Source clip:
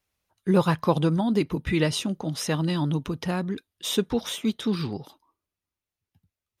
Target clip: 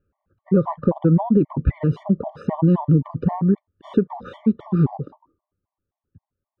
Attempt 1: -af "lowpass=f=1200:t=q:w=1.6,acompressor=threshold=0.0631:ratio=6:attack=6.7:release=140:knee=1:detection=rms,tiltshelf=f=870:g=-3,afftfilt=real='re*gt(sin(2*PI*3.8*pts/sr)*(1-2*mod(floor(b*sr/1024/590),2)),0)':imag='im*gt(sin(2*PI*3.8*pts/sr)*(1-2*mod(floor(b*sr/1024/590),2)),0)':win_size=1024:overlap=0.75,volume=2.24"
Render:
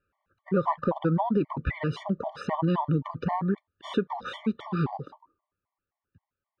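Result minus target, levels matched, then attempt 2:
1 kHz band +8.5 dB
-af "lowpass=f=1200:t=q:w=1.6,acompressor=threshold=0.0631:ratio=6:attack=6.7:release=140:knee=1:detection=rms,tiltshelf=f=870:g=8,afftfilt=real='re*gt(sin(2*PI*3.8*pts/sr)*(1-2*mod(floor(b*sr/1024/590),2)),0)':imag='im*gt(sin(2*PI*3.8*pts/sr)*(1-2*mod(floor(b*sr/1024/590),2)),0)':win_size=1024:overlap=0.75,volume=2.24"

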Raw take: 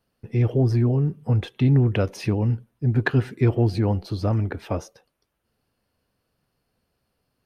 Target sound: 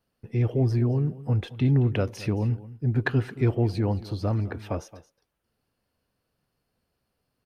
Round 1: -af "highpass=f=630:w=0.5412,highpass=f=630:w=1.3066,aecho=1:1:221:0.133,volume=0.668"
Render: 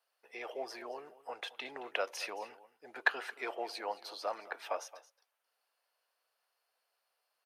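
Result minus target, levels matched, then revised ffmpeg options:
500 Hz band +3.5 dB
-af "aecho=1:1:221:0.133,volume=0.668"

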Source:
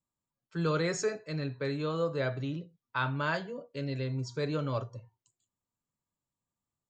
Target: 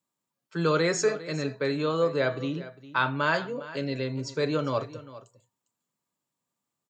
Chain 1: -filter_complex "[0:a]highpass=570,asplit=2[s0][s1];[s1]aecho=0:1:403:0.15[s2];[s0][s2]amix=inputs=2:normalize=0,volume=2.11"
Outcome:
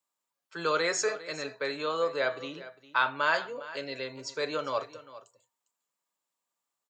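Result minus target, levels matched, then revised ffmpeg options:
250 Hz band -8.5 dB
-filter_complex "[0:a]highpass=190,asplit=2[s0][s1];[s1]aecho=0:1:403:0.15[s2];[s0][s2]amix=inputs=2:normalize=0,volume=2.11"

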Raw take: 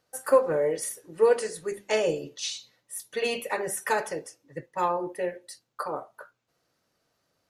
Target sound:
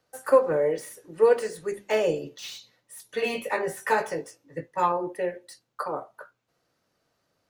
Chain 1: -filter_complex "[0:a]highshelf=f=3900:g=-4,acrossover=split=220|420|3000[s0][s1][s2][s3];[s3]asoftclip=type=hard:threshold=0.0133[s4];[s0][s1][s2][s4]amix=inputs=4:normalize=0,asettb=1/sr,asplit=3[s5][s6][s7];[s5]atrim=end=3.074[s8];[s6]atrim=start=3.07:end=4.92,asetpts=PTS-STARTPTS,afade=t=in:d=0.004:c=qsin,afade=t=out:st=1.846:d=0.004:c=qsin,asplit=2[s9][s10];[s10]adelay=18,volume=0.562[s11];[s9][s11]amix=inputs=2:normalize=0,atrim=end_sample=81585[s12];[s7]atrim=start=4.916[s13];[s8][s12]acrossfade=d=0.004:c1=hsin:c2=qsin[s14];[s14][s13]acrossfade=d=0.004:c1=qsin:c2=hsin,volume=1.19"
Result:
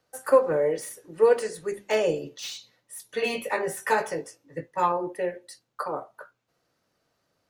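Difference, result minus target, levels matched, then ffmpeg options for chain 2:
hard clipper: distortion -5 dB
-filter_complex "[0:a]highshelf=f=3900:g=-4,acrossover=split=220|420|3000[s0][s1][s2][s3];[s3]asoftclip=type=hard:threshold=0.00668[s4];[s0][s1][s2][s4]amix=inputs=4:normalize=0,asettb=1/sr,asplit=3[s5][s6][s7];[s5]atrim=end=3.074[s8];[s6]atrim=start=3.07:end=4.92,asetpts=PTS-STARTPTS,afade=t=in:d=0.004:c=qsin,afade=t=out:st=1.846:d=0.004:c=qsin,asplit=2[s9][s10];[s10]adelay=18,volume=0.562[s11];[s9][s11]amix=inputs=2:normalize=0,atrim=end_sample=81585[s12];[s7]atrim=start=4.916[s13];[s8][s12]acrossfade=d=0.004:c1=hsin:c2=qsin[s14];[s14][s13]acrossfade=d=0.004:c1=qsin:c2=hsin,volume=1.19"

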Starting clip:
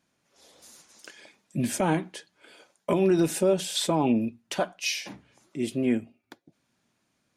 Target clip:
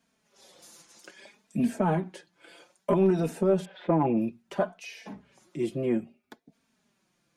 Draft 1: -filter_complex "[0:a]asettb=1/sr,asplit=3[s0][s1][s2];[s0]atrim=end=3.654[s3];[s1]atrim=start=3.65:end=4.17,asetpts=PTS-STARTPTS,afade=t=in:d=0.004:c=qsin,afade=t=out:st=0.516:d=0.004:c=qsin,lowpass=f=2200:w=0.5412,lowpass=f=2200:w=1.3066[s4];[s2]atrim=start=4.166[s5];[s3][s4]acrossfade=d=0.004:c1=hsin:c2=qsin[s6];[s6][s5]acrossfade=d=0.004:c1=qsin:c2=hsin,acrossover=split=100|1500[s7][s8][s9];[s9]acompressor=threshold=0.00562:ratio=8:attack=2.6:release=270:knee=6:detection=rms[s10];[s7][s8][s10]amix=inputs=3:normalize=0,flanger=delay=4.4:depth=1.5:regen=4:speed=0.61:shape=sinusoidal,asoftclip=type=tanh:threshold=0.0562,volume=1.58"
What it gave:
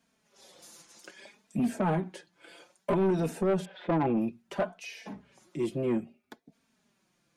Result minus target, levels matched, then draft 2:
saturation: distortion +10 dB
-filter_complex "[0:a]asettb=1/sr,asplit=3[s0][s1][s2];[s0]atrim=end=3.654[s3];[s1]atrim=start=3.65:end=4.17,asetpts=PTS-STARTPTS,afade=t=in:d=0.004:c=qsin,afade=t=out:st=0.516:d=0.004:c=qsin,lowpass=f=2200:w=0.5412,lowpass=f=2200:w=1.3066[s4];[s2]atrim=start=4.166[s5];[s3][s4]acrossfade=d=0.004:c1=hsin:c2=qsin[s6];[s6][s5]acrossfade=d=0.004:c1=qsin:c2=hsin,acrossover=split=100|1500[s7][s8][s9];[s9]acompressor=threshold=0.00562:ratio=8:attack=2.6:release=270:knee=6:detection=rms[s10];[s7][s8][s10]amix=inputs=3:normalize=0,flanger=delay=4.4:depth=1.5:regen=4:speed=0.61:shape=sinusoidal,asoftclip=type=tanh:threshold=0.15,volume=1.58"

